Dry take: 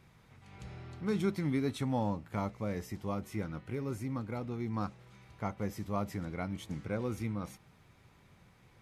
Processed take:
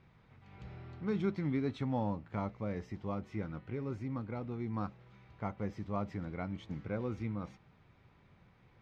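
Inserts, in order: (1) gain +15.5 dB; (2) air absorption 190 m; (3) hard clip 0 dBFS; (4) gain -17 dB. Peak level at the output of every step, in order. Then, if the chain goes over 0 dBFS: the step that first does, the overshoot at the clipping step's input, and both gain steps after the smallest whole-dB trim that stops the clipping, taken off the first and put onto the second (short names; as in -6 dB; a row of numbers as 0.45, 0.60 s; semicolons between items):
-4.5, -5.0, -5.0, -22.0 dBFS; no overload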